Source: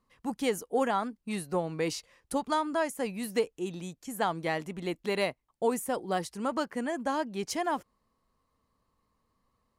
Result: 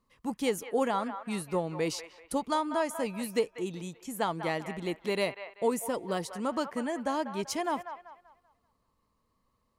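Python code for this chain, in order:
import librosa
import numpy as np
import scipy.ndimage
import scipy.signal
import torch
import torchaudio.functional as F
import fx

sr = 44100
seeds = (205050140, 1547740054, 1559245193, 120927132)

p1 = fx.peak_eq(x, sr, hz=1600.0, db=-3.5, octaves=0.53)
p2 = fx.notch(p1, sr, hz=750.0, q=12.0)
y = p2 + fx.echo_wet_bandpass(p2, sr, ms=193, feedback_pct=35, hz=1300.0, wet_db=-8.5, dry=0)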